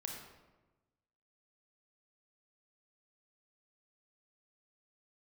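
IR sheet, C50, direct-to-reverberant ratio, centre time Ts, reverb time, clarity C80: 2.5 dB, 0.5 dB, 50 ms, 1.1 s, 5.0 dB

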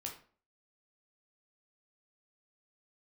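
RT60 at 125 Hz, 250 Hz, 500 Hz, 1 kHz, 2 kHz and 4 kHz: 0.45 s, 0.50 s, 0.45 s, 0.40 s, 0.35 s, 0.30 s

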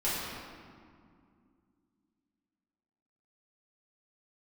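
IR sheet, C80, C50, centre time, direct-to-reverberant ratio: -0.5 dB, -2.5 dB, 133 ms, -11.0 dB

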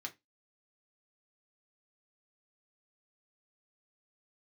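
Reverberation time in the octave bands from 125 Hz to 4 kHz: 0.20 s, 0.25 s, 0.20 s, 0.15 s, 0.20 s, 0.15 s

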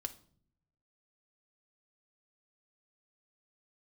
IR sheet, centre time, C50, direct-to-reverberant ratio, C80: 4 ms, 16.0 dB, 6.5 dB, 21.0 dB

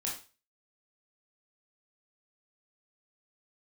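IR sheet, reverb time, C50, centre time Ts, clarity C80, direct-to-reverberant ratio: 0.35 s, 5.0 dB, 32 ms, 11.5 dB, -4.0 dB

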